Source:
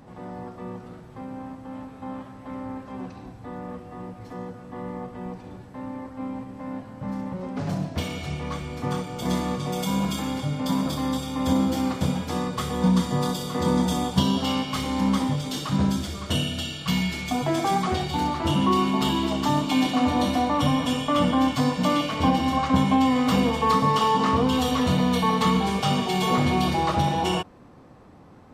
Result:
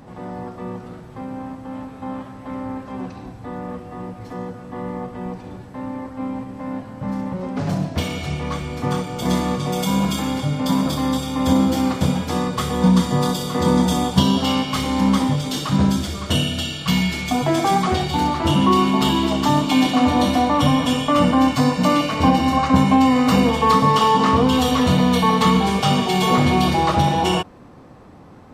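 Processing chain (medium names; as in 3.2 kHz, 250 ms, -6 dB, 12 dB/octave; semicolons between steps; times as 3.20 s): 21.11–23.49 s: band-stop 3.3 kHz, Q 8.6; trim +5.5 dB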